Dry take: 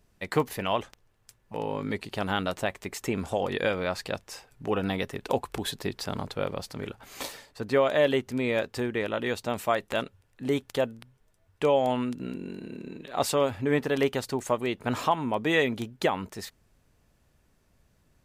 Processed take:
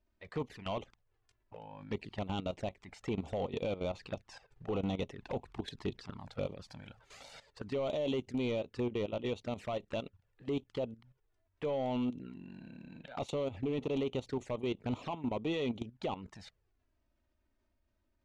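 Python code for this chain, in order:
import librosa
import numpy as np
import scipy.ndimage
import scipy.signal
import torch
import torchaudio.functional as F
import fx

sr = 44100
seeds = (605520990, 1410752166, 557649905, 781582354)

y = fx.peak_eq(x, sr, hz=12000.0, db=8.5, octaves=1.9, at=(6.2, 8.52))
y = fx.level_steps(y, sr, step_db=15)
y = np.clip(10.0 ** (28.0 / 20.0) * y, -1.0, 1.0) / 10.0 ** (28.0 / 20.0)
y = fx.env_flanger(y, sr, rest_ms=3.3, full_db=-32.5)
y = fx.air_absorb(y, sr, metres=120.0)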